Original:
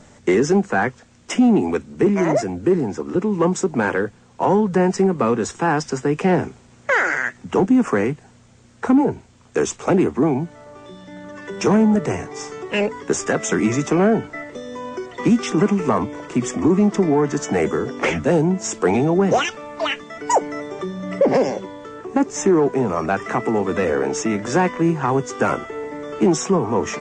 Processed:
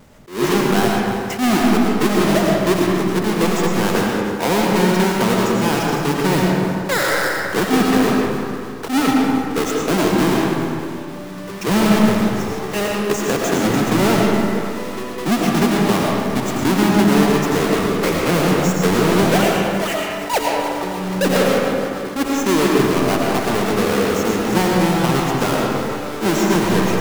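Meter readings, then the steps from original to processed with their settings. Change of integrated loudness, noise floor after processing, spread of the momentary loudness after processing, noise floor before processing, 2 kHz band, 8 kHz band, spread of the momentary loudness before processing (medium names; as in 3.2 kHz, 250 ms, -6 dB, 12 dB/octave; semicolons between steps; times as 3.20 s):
+2.0 dB, -28 dBFS, 7 LU, -50 dBFS, +3.5 dB, +3.0 dB, 13 LU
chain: square wave that keeps the level; on a send: two-band feedback delay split 920 Hz, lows 187 ms, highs 304 ms, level -12 dB; on the sum: algorithmic reverb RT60 2.2 s, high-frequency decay 0.4×, pre-delay 65 ms, DRR -2 dB; attacks held to a fixed rise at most 170 dB/s; trim -6 dB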